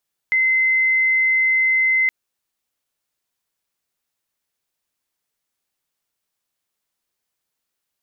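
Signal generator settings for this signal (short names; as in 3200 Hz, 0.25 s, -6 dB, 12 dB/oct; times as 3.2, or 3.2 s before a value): tone sine 2060 Hz -14 dBFS 1.77 s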